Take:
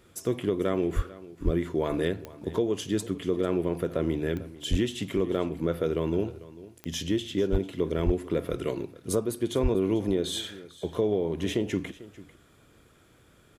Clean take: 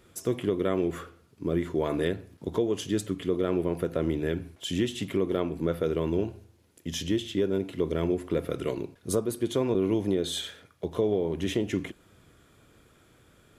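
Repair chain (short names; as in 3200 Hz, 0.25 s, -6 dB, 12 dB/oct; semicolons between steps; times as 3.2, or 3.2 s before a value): clip repair -15 dBFS; de-click; de-plosive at 0.95/1.44/4.7/7.51/8.05/9.62; inverse comb 0.445 s -18.5 dB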